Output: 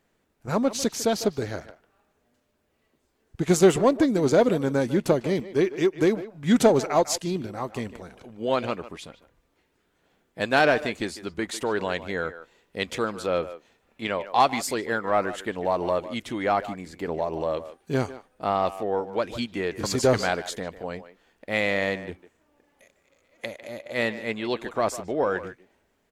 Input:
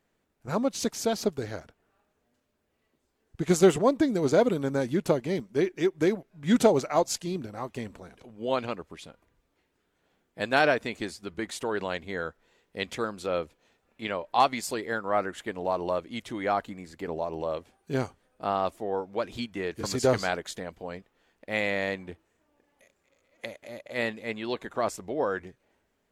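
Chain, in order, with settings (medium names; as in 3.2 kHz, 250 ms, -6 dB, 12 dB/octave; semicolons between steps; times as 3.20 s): in parallel at -4 dB: saturation -20.5 dBFS, distortion -11 dB; on the sum: speakerphone echo 150 ms, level -13 dB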